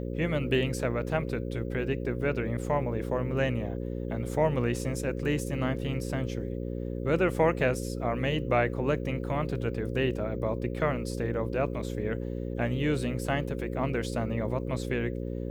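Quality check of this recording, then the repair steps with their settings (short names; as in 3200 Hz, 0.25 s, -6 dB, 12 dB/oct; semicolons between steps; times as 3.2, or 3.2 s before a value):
buzz 60 Hz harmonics 9 -34 dBFS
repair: de-hum 60 Hz, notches 9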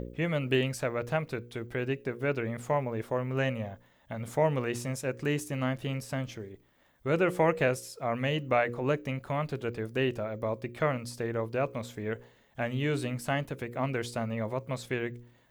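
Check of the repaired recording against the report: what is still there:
none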